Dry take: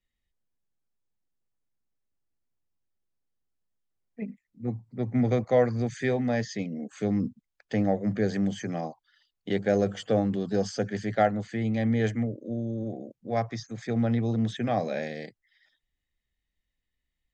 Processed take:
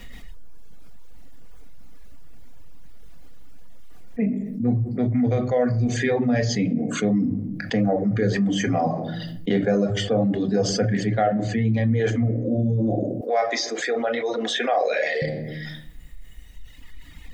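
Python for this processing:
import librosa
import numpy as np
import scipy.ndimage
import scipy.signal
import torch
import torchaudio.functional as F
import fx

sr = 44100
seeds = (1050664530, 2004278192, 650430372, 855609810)

y = fx.high_shelf(x, sr, hz=3700.0, db=-7.5)
y = fx.room_shoebox(y, sr, seeds[0], volume_m3=730.0, walls='furnished', distance_m=1.8)
y = fx.dereverb_blind(y, sr, rt60_s=1.7)
y = fx.rider(y, sr, range_db=4, speed_s=0.5)
y = fx.highpass(y, sr, hz=440.0, slope=24, at=(13.21, 15.22))
y = fx.env_flatten(y, sr, amount_pct=70)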